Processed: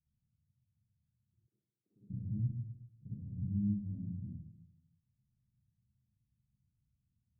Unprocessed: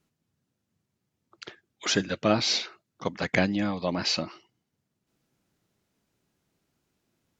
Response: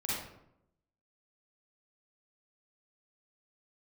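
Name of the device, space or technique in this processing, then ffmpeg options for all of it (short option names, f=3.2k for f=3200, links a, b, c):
club heard from the street: -filter_complex "[0:a]alimiter=limit=-17.5dB:level=0:latency=1:release=56,lowpass=f=140:w=0.5412,lowpass=f=140:w=1.3066[a];[1:a]atrim=start_sample=2205[b];[a][b]afir=irnorm=-1:irlink=0,asplit=3[c][d][e];[c]afade=t=out:st=1.46:d=0.02[f];[d]highpass=620,afade=t=in:st=1.46:d=0.02,afade=t=out:st=2.09:d=0.02[g];[e]afade=t=in:st=2.09:d=0.02[h];[f][g][h]amix=inputs=3:normalize=0,volume=-3dB"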